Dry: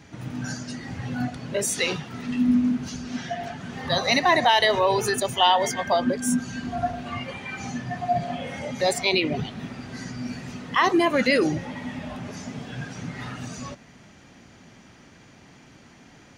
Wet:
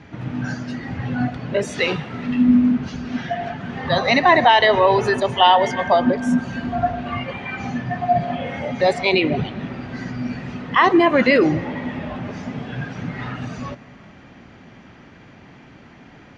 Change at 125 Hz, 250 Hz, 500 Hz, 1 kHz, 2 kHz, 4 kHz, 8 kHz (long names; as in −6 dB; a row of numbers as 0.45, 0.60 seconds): +6.0 dB, +6.0 dB, +6.0 dB, +6.0 dB, +5.0 dB, +1.5 dB, below −10 dB